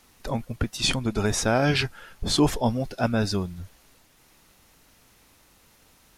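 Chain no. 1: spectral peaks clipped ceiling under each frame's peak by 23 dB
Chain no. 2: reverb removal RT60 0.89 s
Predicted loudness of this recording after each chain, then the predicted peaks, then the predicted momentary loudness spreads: -25.0 LUFS, -26.0 LUFS; -7.0 dBFS, -9.5 dBFS; 11 LU, 10 LU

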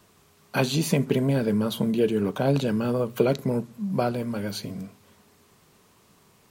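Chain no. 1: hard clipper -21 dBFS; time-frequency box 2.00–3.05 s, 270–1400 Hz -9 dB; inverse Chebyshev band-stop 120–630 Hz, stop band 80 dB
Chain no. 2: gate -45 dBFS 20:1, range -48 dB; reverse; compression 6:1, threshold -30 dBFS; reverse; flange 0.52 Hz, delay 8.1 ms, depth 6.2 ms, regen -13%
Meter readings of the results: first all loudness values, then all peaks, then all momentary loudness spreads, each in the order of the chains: -39.0 LUFS, -37.5 LUFS; -19.5 dBFS, -22.5 dBFS; 18 LU, 5 LU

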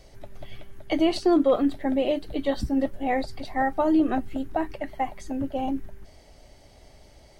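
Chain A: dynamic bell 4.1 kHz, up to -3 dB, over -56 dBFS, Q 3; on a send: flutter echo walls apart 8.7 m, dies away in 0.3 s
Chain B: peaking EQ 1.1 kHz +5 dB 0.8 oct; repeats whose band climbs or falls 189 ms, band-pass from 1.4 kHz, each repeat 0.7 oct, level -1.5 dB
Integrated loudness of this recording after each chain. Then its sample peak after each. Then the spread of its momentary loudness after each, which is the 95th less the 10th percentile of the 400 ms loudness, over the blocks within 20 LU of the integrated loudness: -25.5 LUFS, -25.0 LUFS; -10.0 dBFS, -10.5 dBFS; 11 LU, 10 LU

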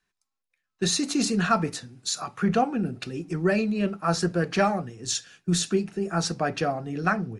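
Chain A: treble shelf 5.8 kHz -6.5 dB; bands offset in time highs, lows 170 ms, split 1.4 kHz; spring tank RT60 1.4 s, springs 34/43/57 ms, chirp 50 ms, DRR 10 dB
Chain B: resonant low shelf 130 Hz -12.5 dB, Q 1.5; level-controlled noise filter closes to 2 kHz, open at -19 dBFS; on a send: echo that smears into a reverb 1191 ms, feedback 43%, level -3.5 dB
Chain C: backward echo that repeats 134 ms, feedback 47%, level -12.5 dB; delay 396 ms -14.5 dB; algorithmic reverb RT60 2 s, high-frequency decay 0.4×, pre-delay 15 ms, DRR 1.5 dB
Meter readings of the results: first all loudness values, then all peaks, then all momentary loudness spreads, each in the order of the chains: -26.5 LUFS, -24.0 LUFS, -23.5 LUFS; -10.5 dBFS, -8.0 dBFS, -7.0 dBFS; 9 LU, 6 LU, 5 LU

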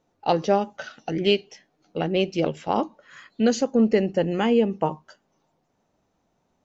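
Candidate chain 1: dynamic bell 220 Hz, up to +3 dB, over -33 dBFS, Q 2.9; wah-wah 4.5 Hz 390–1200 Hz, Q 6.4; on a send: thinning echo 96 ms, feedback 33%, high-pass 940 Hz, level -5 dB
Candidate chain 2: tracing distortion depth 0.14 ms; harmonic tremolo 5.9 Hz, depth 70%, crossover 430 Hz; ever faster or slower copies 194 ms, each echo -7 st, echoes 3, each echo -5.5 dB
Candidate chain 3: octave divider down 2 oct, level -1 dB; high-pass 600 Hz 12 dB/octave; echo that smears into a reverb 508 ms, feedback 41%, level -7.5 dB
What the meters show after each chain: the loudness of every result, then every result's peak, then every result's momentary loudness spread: -32.0 LUFS, -27.5 LUFS, -29.5 LUFS; -14.0 dBFS, -9.5 dBFS, -10.0 dBFS; 13 LU, 8 LU, 14 LU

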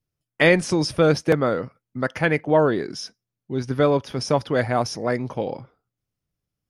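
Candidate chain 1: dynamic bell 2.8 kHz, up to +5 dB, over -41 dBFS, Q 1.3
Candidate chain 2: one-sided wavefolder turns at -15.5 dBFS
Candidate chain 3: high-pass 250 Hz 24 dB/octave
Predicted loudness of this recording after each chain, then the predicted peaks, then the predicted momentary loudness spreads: -21.0 LUFS, -23.5 LUFS, -22.5 LUFS; -2.0 dBFS, -5.5 dBFS, -4.0 dBFS; 14 LU, 11 LU, 14 LU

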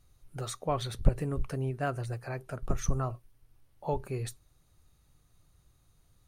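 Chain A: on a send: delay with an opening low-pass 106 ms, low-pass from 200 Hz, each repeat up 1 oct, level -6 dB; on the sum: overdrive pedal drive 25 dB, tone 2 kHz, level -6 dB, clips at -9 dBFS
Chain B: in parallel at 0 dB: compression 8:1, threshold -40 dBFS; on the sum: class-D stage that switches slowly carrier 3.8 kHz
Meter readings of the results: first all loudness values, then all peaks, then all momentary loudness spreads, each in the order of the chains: -25.5 LUFS, -29.0 LUFS; -10.0 dBFS, -8.5 dBFS; 12 LU, 3 LU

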